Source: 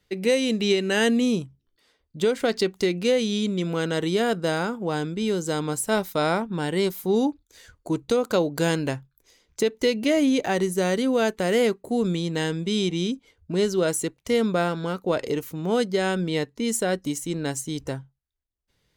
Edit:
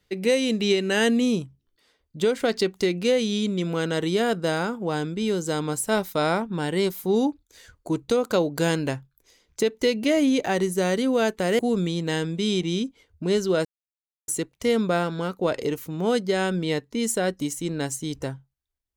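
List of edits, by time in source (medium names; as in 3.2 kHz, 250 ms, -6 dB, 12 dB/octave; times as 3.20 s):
11.59–11.87 s: delete
13.93 s: insert silence 0.63 s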